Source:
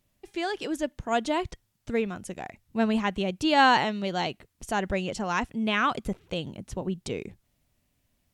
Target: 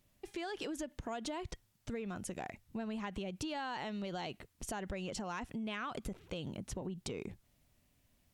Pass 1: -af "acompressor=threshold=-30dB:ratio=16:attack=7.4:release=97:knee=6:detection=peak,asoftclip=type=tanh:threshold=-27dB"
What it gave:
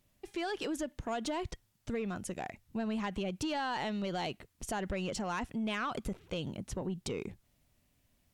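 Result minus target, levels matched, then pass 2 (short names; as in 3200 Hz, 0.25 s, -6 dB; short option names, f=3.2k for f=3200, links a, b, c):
compressor: peak gain reduction -6.5 dB
-af "acompressor=threshold=-37dB:ratio=16:attack=7.4:release=97:knee=6:detection=peak,asoftclip=type=tanh:threshold=-27dB"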